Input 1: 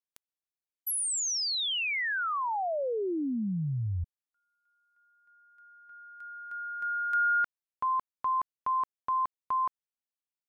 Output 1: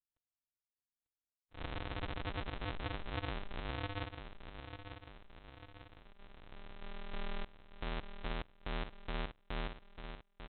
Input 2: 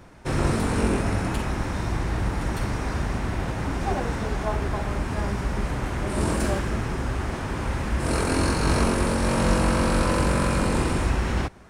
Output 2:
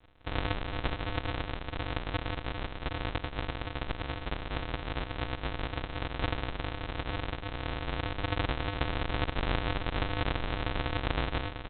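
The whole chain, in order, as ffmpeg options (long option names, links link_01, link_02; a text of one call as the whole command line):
ffmpeg -i in.wav -af "aresample=8000,acrusher=samples=40:mix=1:aa=0.000001,aresample=44100,lowshelf=frequency=390:gain=-12,aecho=1:1:895|1790|2685|3580|4475|5370:0.355|0.181|0.0923|0.0471|0.024|0.0122" out.wav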